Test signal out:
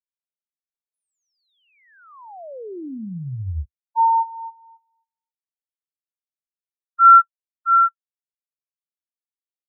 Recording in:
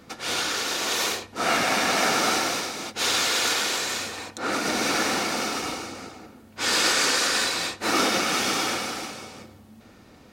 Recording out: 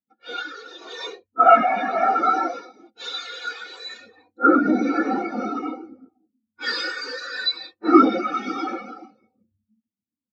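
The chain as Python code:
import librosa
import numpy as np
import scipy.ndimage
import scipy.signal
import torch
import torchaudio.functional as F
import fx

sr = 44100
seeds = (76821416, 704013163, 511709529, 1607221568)

p1 = fx.cheby_harmonics(x, sr, harmonics=(5,), levels_db=(-9,), full_scale_db=-9.0)
p2 = fx.rider(p1, sr, range_db=5, speed_s=0.5)
p3 = p1 + F.gain(torch.from_numpy(p2), 0.0).numpy()
p4 = fx.room_flutter(p3, sr, wall_m=10.6, rt60_s=0.23)
p5 = fx.spectral_expand(p4, sr, expansion=4.0)
y = F.gain(torch.from_numpy(p5), 2.0).numpy()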